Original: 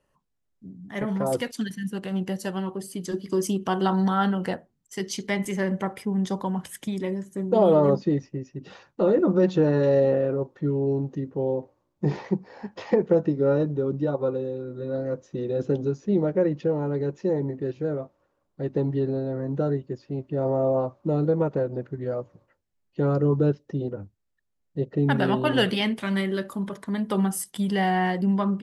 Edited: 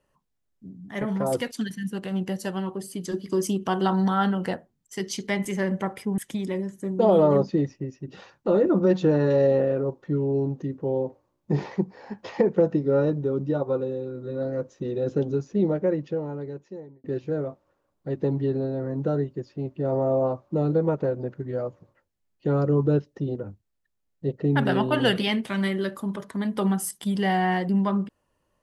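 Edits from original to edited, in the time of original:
0:06.18–0:06.71: remove
0:16.16–0:17.57: fade out

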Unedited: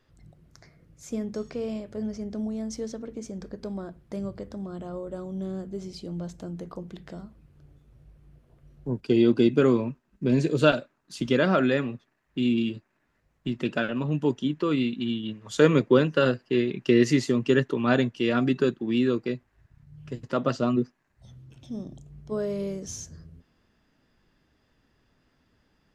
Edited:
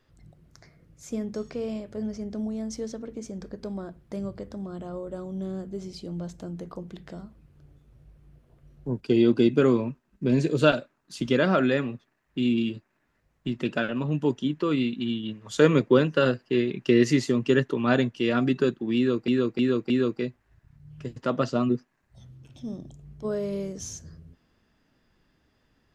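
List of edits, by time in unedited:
0:18.97–0:19.28: repeat, 4 plays

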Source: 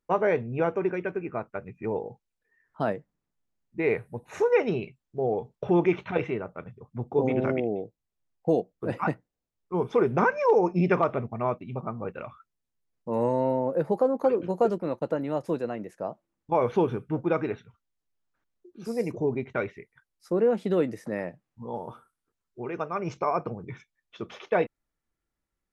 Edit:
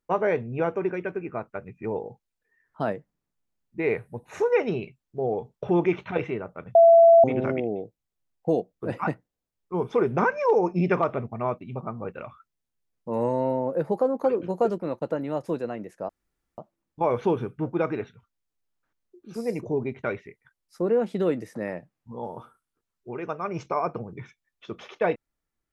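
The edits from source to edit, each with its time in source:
0:06.75–0:07.24: beep over 670 Hz −10 dBFS
0:16.09: splice in room tone 0.49 s

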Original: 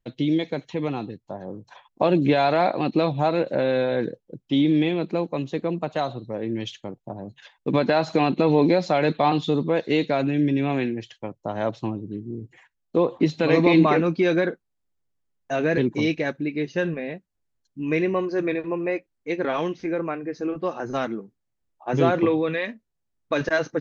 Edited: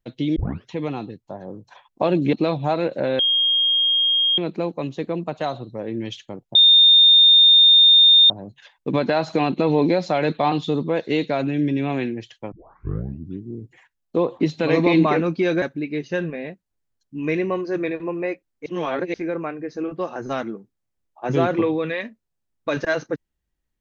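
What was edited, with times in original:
0:00.36: tape start 0.33 s
0:02.33–0:02.88: remove
0:03.74–0:04.93: beep over 3,240 Hz −15.5 dBFS
0:07.10: insert tone 3,640 Hz −8.5 dBFS 1.75 s
0:11.32: tape start 0.90 s
0:14.42–0:16.26: remove
0:19.30–0:19.78: reverse

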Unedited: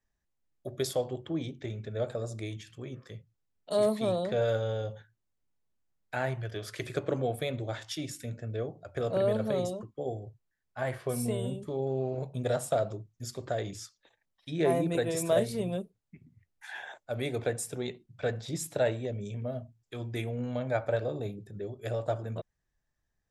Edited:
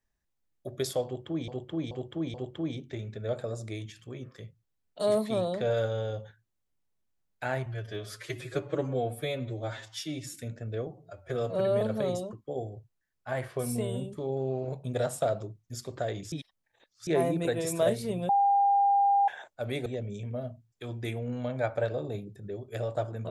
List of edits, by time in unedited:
0:01.05–0:01.48: repeat, 4 plays
0:06.37–0:08.16: time-stretch 1.5×
0:08.68–0:09.31: time-stretch 1.5×
0:13.82–0:14.57: reverse
0:15.79–0:16.78: beep over 801 Hz −20 dBFS
0:17.36–0:18.97: remove

